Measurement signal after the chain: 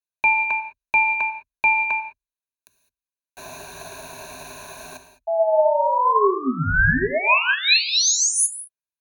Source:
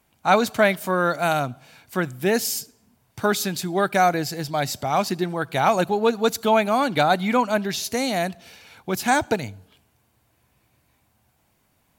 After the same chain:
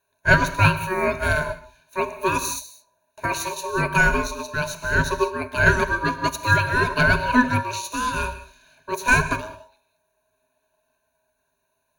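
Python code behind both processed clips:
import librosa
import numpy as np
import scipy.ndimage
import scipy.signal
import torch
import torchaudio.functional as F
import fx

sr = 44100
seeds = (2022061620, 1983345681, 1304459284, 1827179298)

y = x * np.sin(2.0 * np.pi * 750.0 * np.arange(len(x)) / sr)
y = fx.ripple_eq(y, sr, per_octave=1.5, db=17)
y = fx.rev_gated(y, sr, seeds[0], gate_ms=230, shape='flat', drr_db=6.5)
y = fx.upward_expand(y, sr, threshold_db=-35.0, expansion=1.5)
y = y * librosa.db_to_amplitude(2.0)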